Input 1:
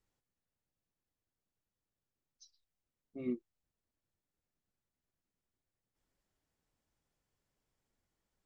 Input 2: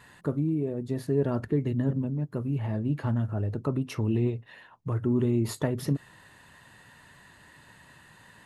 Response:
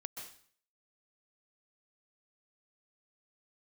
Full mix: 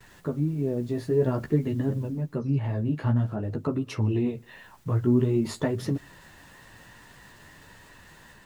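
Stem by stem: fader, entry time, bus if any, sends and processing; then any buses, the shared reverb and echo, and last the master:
2.04 s -10 dB -> 2.39 s -23 dB -> 4.14 s -23 dB -> 4.67 s -12.5 dB, 0.00 s, no send, wrapped overs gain 42.5 dB; fast leveller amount 100%
+1.5 dB, 0.00 s, send -23.5 dB, LPF 8200 Hz; flange 0.51 Hz, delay 9.2 ms, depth 9.1 ms, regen -1%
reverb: on, RT60 0.50 s, pre-delay 0.117 s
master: gate with hold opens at -48 dBFS; AGC gain up to 3 dB

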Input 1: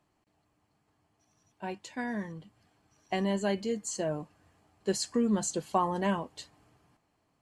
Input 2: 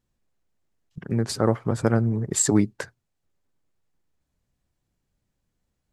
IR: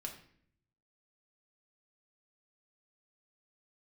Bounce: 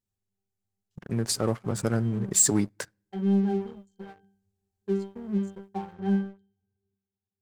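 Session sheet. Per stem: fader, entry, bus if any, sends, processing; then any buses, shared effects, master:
+3.0 dB, 0.00 s, send -20 dB, Wiener smoothing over 41 samples; high shelf 4000 Hz +5.5 dB; octave resonator G, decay 0.46 s
-12.5 dB, 0.00 s, send -19.5 dB, dry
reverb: on, RT60 0.60 s, pre-delay 5 ms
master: high shelf 4300 Hz +12 dB; sample leveller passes 2

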